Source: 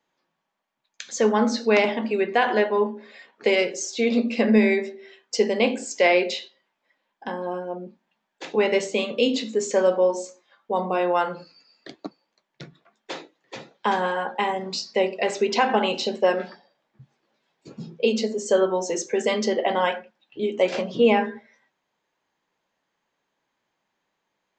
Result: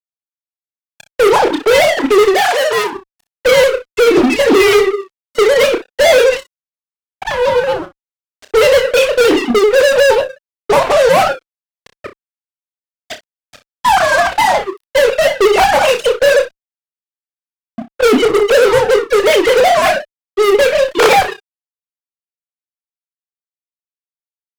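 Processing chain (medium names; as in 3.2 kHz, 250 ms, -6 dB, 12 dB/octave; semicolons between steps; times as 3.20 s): formants replaced by sine waves; fuzz box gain 31 dB, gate -39 dBFS; level rider gain up to 12 dB; 2.34–2.93 s: high-pass 890 Hz 6 dB/octave; on a send: early reflections 30 ms -8.5 dB, 61 ms -15 dB; on the sum: vibrato with a chosen wave saw down 5.5 Hz, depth 100 cents; trim -4 dB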